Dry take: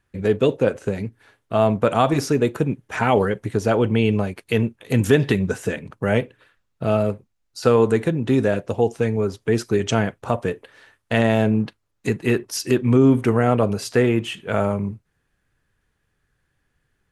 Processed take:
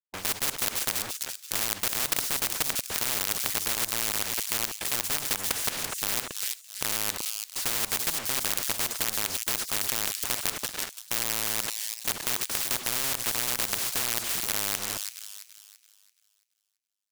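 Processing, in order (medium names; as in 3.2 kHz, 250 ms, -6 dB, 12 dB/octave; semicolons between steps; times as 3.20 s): dynamic bell 150 Hz, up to -6 dB, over -33 dBFS, Q 1.5; in parallel at 0 dB: compression 8:1, threshold -28 dBFS, peak gain reduction 17 dB; on the sum: companded quantiser 2-bit; on a send: feedback echo behind a high-pass 336 ms, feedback 35%, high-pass 5.5 kHz, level -8 dB; on the sum: spectrum-flattening compressor 10:1; trim -3.5 dB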